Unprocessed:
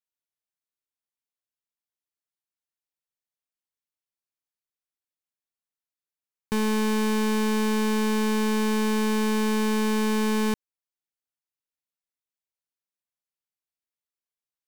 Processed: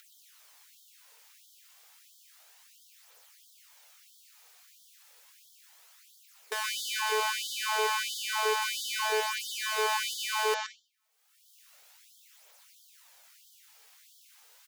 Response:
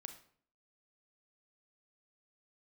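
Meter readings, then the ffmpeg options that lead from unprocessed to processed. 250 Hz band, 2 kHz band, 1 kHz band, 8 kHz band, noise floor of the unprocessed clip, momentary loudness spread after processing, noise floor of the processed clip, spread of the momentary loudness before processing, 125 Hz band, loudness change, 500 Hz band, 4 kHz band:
under -40 dB, +1.0 dB, -0.5 dB, +1.5 dB, under -85 dBFS, 5 LU, -62 dBFS, 2 LU, n/a, -5.0 dB, -7.0 dB, +3.0 dB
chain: -filter_complex "[0:a]acompressor=mode=upward:threshold=-45dB:ratio=2.5,aphaser=in_gain=1:out_gain=1:delay=3:decay=0.48:speed=0.32:type=triangular,asoftclip=type=tanh:threshold=-27.5dB,asplit=2[a][b];[b]aresample=16000,aresample=44100[c];[1:a]atrim=start_sample=2205,adelay=123[d];[c][d]afir=irnorm=-1:irlink=0,volume=3.5dB[e];[a][e]amix=inputs=2:normalize=0,afftfilt=real='re*gte(b*sr/1024,400*pow(3100/400,0.5+0.5*sin(2*PI*1.5*pts/sr)))':imag='im*gte(b*sr/1024,400*pow(3100/400,0.5+0.5*sin(2*PI*1.5*pts/sr)))':win_size=1024:overlap=0.75,volume=6dB"

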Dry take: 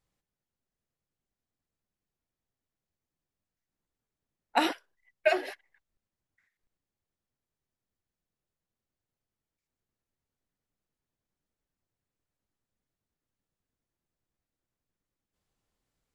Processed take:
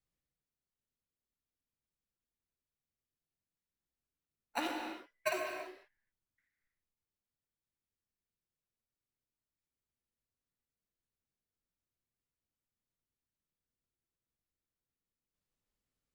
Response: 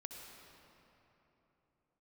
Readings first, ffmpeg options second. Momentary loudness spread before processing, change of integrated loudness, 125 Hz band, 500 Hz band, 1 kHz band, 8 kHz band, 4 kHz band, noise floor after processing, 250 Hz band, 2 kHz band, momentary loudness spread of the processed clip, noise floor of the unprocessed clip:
14 LU, -10.0 dB, n/a, -10.0 dB, -9.0 dB, -1.0 dB, -8.5 dB, under -85 dBFS, -7.5 dB, -8.0 dB, 9 LU, under -85 dBFS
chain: -filter_complex "[0:a]acrossover=split=4500[a][b];[b]acompressor=threshold=-57dB:ratio=4:attack=1:release=60[c];[a][c]amix=inputs=2:normalize=0,acrossover=split=290|860|2400[d][e][f][g];[e]acrusher=samples=26:mix=1:aa=0.000001[h];[d][h][f][g]amix=inputs=4:normalize=0[i];[1:a]atrim=start_sample=2205,afade=t=out:st=0.39:d=0.01,atrim=end_sample=17640[j];[i][j]afir=irnorm=-1:irlink=0,volume=-3.5dB"

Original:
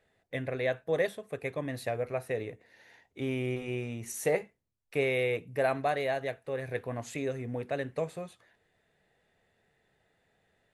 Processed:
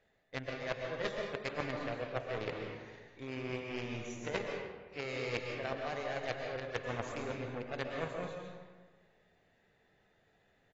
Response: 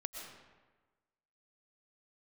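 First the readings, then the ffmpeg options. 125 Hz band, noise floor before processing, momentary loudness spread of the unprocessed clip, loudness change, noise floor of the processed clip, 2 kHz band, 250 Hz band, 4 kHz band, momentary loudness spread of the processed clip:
-6.5 dB, -75 dBFS, 8 LU, -6.5 dB, -72 dBFS, -4.0 dB, -5.5 dB, 0.0 dB, 8 LU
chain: -filter_complex "[0:a]areverse,acompressor=threshold=-42dB:ratio=8,areverse,aeval=exprs='0.0237*(cos(1*acos(clip(val(0)/0.0237,-1,1)))-cos(1*PI/2))+0.0119*(cos(2*acos(clip(val(0)/0.0237,-1,1)))-cos(2*PI/2))+0.00473*(cos(3*acos(clip(val(0)/0.0237,-1,1)))-cos(3*PI/2))+0.00422*(cos(4*acos(clip(val(0)/0.0237,-1,1)))-cos(4*PI/2))+0.000211*(cos(7*acos(clip(val(0)/0.0237,-1,1)))-cos(7*PI/2))':c=same[a];[1:a]atrim=start_sample=2205,asetrate=40572,aresample=44100[b];[a][b]afir=irnorm=-1:irlink=0,aresample=16000,aresample=44100,volume=10dB" -ar 22050 -c:a aac -b:a 24k

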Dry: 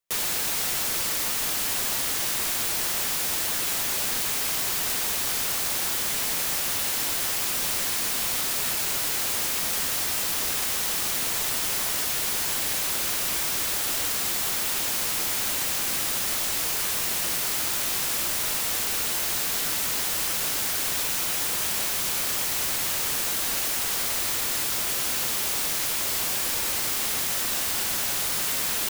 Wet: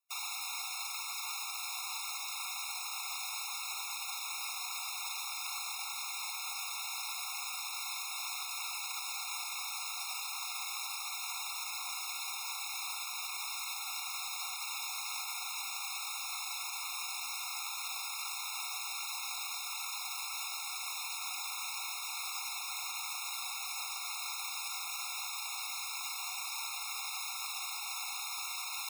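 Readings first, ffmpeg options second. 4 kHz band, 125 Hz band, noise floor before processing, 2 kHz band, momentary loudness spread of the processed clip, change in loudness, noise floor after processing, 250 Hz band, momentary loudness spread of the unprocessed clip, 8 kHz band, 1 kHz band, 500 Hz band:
-10.0 dB, under -40 dB, -27 dBFS, -10.0 dB, 0 LU, -13.5 dB, -41 dBFS, under -40 dB, 0 LU, -13.5 dB, -7.5 dB, under -25 dB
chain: -filter_complex "[0:a]highpass=730,acrossover=split=7500[a][b];[b]acompressor=threshold=-34dB:ratio=4:attack=1:release=60[c];[a][c]amix=inputs=2:normalize=0,alimiter=level_in=3dB:limit=-24dB:level=0:latency=1,volume=-3dB,afftfilt=real='re*eq(mod(floor(b*sr/1024/710),2),1)':imag='im*eq(mod(floor(b*sr/1024/710),2),1)':win_size=1024:overlap=0.75"

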